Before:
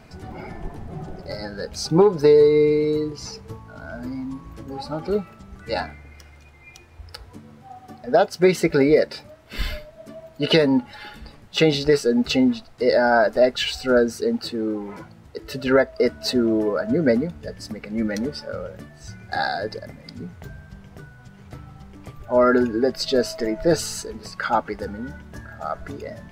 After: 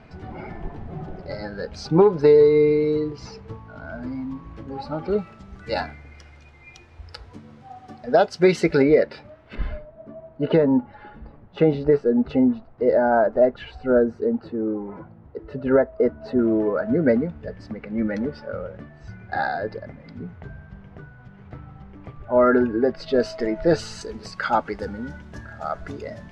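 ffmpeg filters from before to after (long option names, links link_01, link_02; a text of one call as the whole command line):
ffmpeg -i in.wav -af "asetnsamples=nb_out_samples=441:pad=0,asendcmd='5.18 lowpass f 5700;8.82 lowpass f 2600;9.55 lowpass f 1100;16.39 lowpass f 2200;23.2 lowpass f 3800;24.01 lowpass f 6700',lowpass=3300" out.wav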